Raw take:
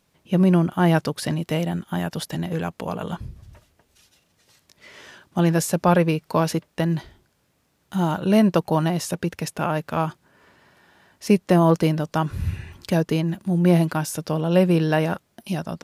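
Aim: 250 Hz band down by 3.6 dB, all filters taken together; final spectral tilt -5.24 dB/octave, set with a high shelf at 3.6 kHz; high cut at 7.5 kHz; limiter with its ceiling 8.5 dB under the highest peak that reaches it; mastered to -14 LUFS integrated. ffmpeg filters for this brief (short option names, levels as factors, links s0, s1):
-af "lowpass=7500,equalizer=f=250:t=o:g=-6.5,highshelf=f=3600:g=7.5,volume=4.22,alimiter=limit=0.75:level=0:latency=1"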